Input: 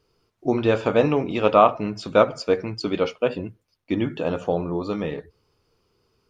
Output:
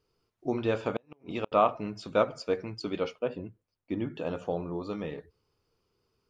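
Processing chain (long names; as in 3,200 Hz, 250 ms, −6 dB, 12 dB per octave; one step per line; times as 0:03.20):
0:00.94–0:01.52: gate with flip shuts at −9 dBFS, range −39 dB
0:03.19–0:04.15: high-shelf EQ 2,100 Hz −8.5 dB
level −8.5 dB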